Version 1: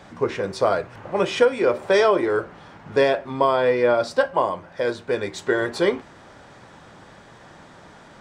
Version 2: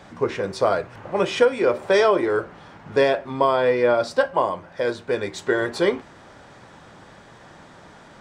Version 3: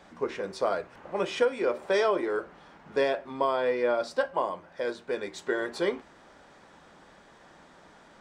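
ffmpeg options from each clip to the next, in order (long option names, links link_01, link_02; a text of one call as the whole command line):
ffmpeg -i in.wav -af anull out.wav
ffmpeg -i in.wav -af "equalizer=frequency=110:width_type=o:width=0.57:gain=-15,volume=-7.5dB" out.wav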